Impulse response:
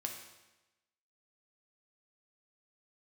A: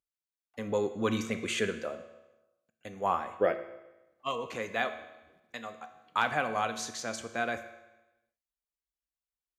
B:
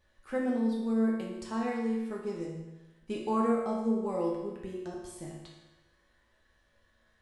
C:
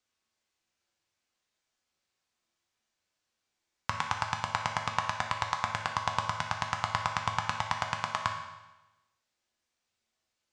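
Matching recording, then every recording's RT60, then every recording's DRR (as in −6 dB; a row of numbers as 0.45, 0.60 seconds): C; 1.0, 1.0, 1.0 seconds; 8.0, −4.0, 2.0 decibels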